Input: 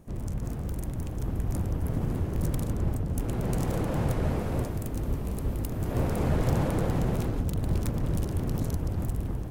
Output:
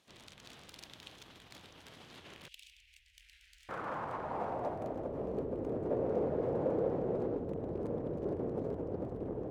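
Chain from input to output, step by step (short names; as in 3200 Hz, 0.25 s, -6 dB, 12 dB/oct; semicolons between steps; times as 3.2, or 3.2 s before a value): tracing distortion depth 0.41 ms; in parallel at +2.5 dB: negative-ratio compressor -32 dBFS, ratio -1; on the sum: band-pass sweep 3600 Hz -> 470 Hz, 2.15–5.42; 2.48–3.69 inverse Chebyshev band-stop 130–1200 Hz, stop band 50 dB; gain -1 dB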